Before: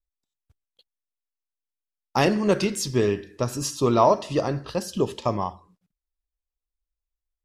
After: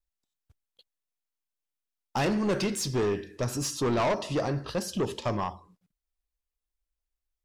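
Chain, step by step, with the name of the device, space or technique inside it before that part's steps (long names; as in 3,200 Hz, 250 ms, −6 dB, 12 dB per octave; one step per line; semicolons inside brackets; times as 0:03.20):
saturation between pre-emphasis and de-emphasis (high-shelf EQ 9,400 Hz +12 dB; soft clipping −22.5 dBFS, distortion −7 dB; high-shelf EQ 9,400 Hz −12 dB)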